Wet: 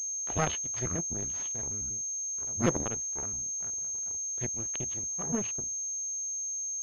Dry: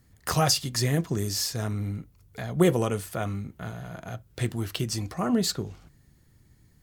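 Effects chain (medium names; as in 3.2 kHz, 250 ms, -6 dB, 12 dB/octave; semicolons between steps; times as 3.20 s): pitch shift switched off and on -8 st, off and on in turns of 95 ms; power-law waveshaper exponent 2; class-D stage that switches slowly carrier 6.4 kHz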